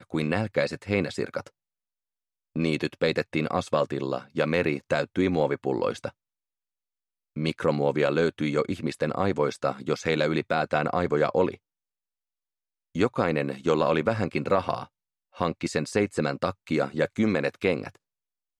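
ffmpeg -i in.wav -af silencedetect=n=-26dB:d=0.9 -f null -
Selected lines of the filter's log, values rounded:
silence_start: 1.40
silence_end: 2.56 | silence_duration: 1.16
silence_start: 6.08
silence_end: 7.37 | silence_duration: 1.29
silence_start: 11.51
silence_end: 12.96 | silence_duration: 1.45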